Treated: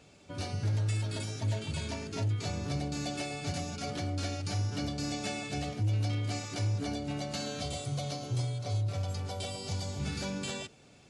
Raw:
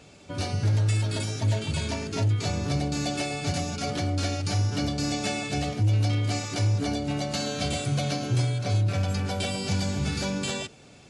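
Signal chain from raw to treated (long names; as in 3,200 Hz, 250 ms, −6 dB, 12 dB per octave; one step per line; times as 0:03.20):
0:07.61–0:10.00: thirty-one-band graphic EQ 200 Hz −10 dB, 315 Hz −6 dB, 1,600 Hz −10 dB, 2,500 Hz −7 dB
level −7 dB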